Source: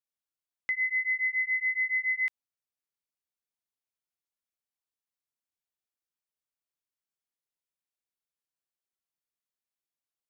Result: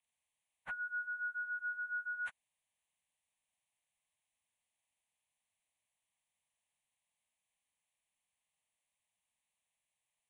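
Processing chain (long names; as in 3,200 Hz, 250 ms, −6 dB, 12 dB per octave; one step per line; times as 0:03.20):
partials spread apart or drawn together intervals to 84%
phaser with its sweep stopped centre 1,400 Hz, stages 6
level +9.5 dB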